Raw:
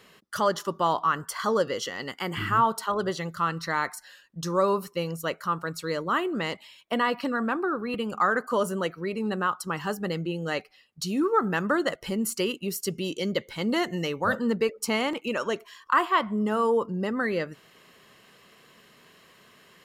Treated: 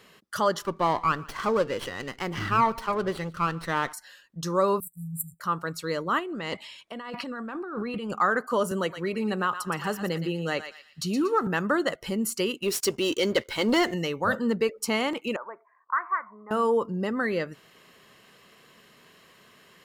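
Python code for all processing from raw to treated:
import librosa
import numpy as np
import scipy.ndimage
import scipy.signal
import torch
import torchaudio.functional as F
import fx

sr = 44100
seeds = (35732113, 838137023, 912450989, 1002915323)

y = fx.chain(x, sr, fx.high_shelf(hz=6100.0, db=-6.0),
    fx.echo_single(ms=145, db=-22.5),
    fx.running_max(window=5), at=(0.62, 3.93))
y = fx.chain(y, sr, fx.brickwall_bandstop(low_hz=190.0, high_hz=7300.0),
    fx.high_shelf(hz=5100.0, db=10.5),
    fx.band_widen(depth_pct=70), at=(4.8, 5.4))
y = fx.chain(y, sr, fx.lowpass(hz=10000.0, slope=12),
    fx.over_compress(threshold_db=-34.0, ratio=-1.0), at=(6.19, 8.13))
y = fx.chain(y, sr, fx.echo_thinned(ms=117, feedback_pct=32, hz=1200.0, wet_db=-8),
    fx.band_squash(depth_pct=40), at=(8.71, 11.47))
y = fx.chain(y, sr, fx.median_filter(points=3),
    fx.peak_eq(hz=170.0, db=-15.0, octaves=0.54),
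    fx.leveller(passes=2), at=(12.62, 13.94))
y = fx.chain(y, sr, fx.steep_lowpass(hz=2300.0, slope=96),
    fx.auto_wah(base_hz=690.0, top_hz=1500.0, q=3.6, full_db=-17.5, direction='up'), at=(15.36, 16.51))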